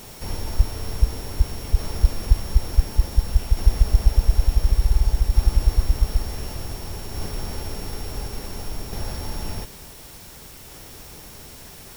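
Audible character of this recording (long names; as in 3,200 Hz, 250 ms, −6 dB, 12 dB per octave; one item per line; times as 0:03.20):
a buzz of ramps at a fixed pitch in blocks of 8 samples
tremolo saw down 0.56 Hz, depth 35%
a quantiser's noise floor 8 bits, dither triangular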